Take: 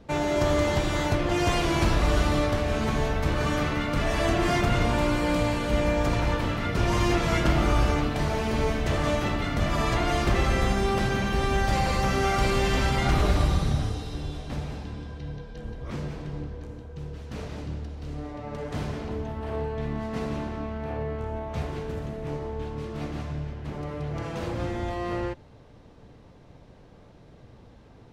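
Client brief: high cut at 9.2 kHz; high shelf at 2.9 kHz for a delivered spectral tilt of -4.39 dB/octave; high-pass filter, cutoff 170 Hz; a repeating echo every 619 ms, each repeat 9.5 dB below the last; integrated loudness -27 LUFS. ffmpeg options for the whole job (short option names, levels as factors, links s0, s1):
-af "highpass=170,lowpass=9200,highshelf=f=2900:g=-4.5,aecho=1:1:619|1238|1857|2476:0.335|0.111|0.0365|0.012,volume=1.19"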